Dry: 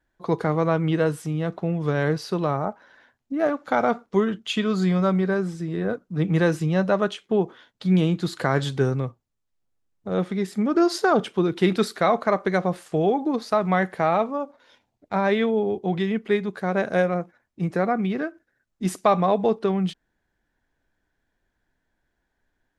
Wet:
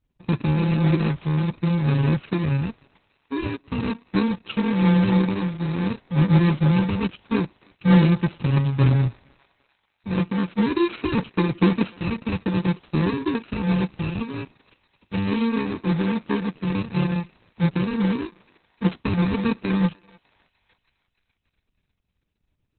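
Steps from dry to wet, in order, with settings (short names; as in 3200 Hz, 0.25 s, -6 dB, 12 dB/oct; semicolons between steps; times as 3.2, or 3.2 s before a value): FFT order left unsorted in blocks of 64 samples; 14.29–15.41 high shelf 2400 Hz +3 dB; thinning echo 0.3 s, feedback 65%, high-pass 810 Hz, level -21 dB; 16.12–16.86 gate with hold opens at -39 dBFS; LPF 7500 Hz 12 dB/oct; bell 95 Hz +11 dB 2.1 oct; Opus 6 kbps 48000 Hz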